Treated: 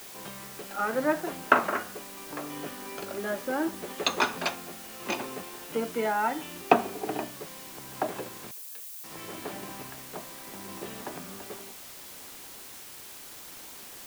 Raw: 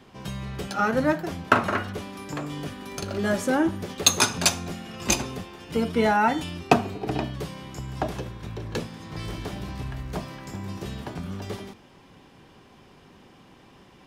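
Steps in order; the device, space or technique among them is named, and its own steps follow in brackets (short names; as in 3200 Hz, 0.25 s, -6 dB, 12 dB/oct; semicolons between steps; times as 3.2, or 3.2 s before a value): shortwave radio (BPF 310–2600 Hz; tremolo 0.73 Hz, depth 50%; white noise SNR 12 dB); 8.51–9.04 differentiator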